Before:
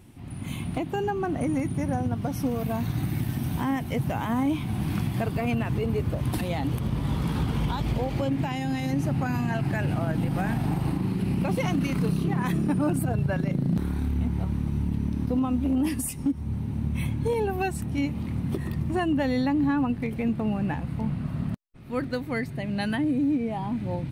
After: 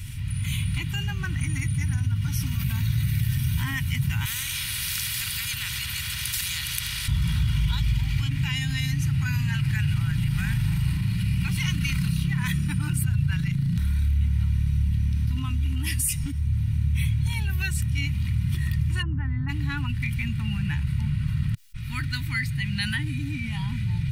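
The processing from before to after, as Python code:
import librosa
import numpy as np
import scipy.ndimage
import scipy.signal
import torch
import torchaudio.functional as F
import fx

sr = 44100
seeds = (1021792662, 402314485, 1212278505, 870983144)

y = fx.spectral_comp(x, sr, ratio=4.0, at=(4.25, 7.08))
y = fx.lowpass(y, sr, hz=1300.0, slope=24, at=(19.01, 19.48), fade=0.02)
y = scipy.signal.sosfilt(scipy.signal.cheby1(2, 1.0, [120.0, 2200.0], 'bandstop', fs=sr, output='sos'), y)
y = y + 0.46 * np.pad(y, (int(2.1 * sr / 1000.0), 0))[:len(y)]
y = fx.env_flatten(y, sr, amount_pct=50)
y = F.gain(torch.from_numpy(y), 2.5).numpy()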